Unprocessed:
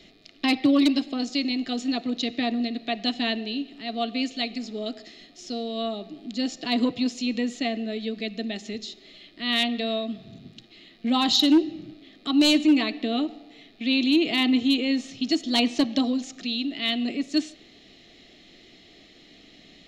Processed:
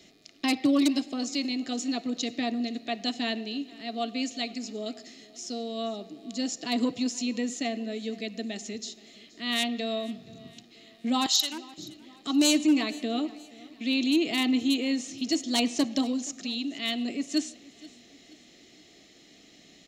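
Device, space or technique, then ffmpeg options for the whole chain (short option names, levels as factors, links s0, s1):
budget condenser microphone: -filter_complex "[0:a]asettb=1/sr,asplit=3[s0][s1][s2];[s0]atrim=end=11.264[s3];[s1]atrim=start=11.26:end=11.78,asetpts=PTS-STARTPTS,afade=t=in:d=0.004:c=qsin,afade=t=out:st=0.516:d=0.004:c=qsin,highpass=970[s4];[s2]atrim=start=11.776[s5];[s3][s4]acrossfade=d=0.004:c1=hsin:c2=qsin[s6];[s6][s5]acrossfade=d=0.004:c1=qsin:c2=hsin,highpass=f=91:p=1,highshelf=f=5100:t=q:w=1.5:g=8,aecho=1:1:475|950|1425:0.0841|0.037|0.0163,volume=0.708"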